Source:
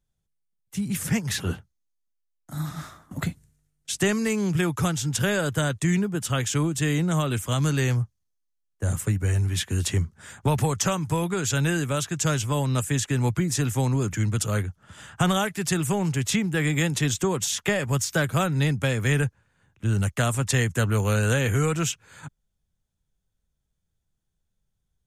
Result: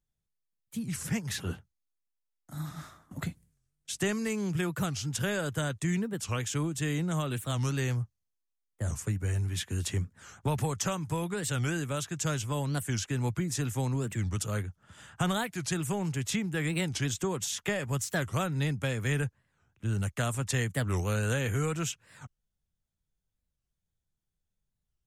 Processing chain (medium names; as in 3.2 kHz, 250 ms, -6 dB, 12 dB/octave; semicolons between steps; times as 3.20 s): warped record 45 rpm, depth 250 cents; trim -7 dB